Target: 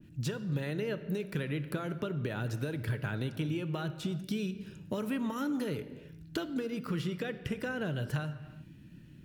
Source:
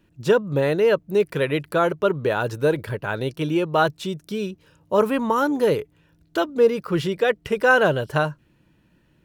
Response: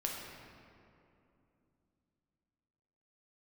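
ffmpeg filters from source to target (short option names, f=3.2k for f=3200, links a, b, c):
-filter_complex "[0:a]acompressor=threshold=-26dB:ratio=6,equalizer=f=125:t=o:w=1:g=7,equalizer=f=250:t=o:w=1:g=6,equalizer=f=500:t=o:w=1:g=-7,equalizer=f=1k:t=o:w=1:g=-10,acrossover=split=610|1600[a][b][c];[a]acompressor=threshold=-37dB:ratio=4[d];[b]acompressor=threshold=-44dB:ratio=4[e];[c]acompressor=threshold=-44dB:ratio=4[f];[d][e][f]amix=inputs=3:normalize=0,asplit=2[g][h];[1:a]atrim=start_sample=2205,afade=t=out:st=0.43:d=0.01,atrim=end_sample=19404[i];[h][i]afir=irnorm=-1:irlink=0,volume=-8dB[j];[g][j]amix=inputs=2:normalize=0,adynamicequalizer=threshold=0.00224:dfrequency=1900:dqfactor=0.7:tfrequency=1900:tqfactor=0.7:attack=5:release=100:ratio=0.375:range=2:mode=cutabove:tftype=highshelf"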